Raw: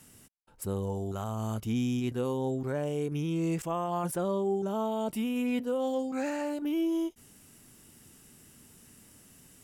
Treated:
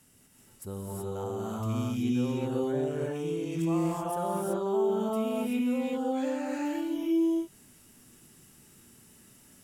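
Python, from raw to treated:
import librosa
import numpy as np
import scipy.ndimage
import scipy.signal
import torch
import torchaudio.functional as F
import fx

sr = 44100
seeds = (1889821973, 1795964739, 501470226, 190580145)

y = fx.rev_gated(x, sr, seeds[0], gate_ms=400, shape='rising', drr_db=-4.5)
y = y * librosa.db_to_amplitude(-6.0)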